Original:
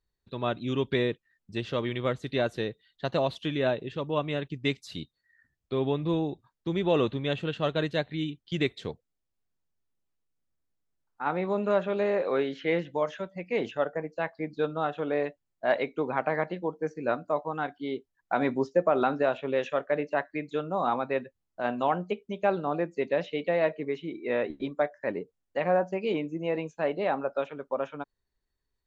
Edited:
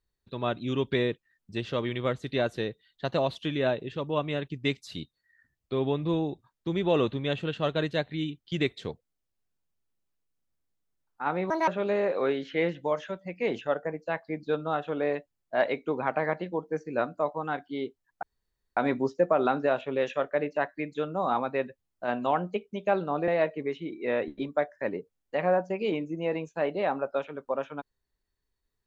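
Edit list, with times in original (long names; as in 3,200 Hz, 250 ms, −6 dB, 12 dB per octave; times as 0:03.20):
0:11.50–0:11.78: play speed 158%
0:18.33: splice in room tone 0.54 s
0:22.84–0:23.50: remove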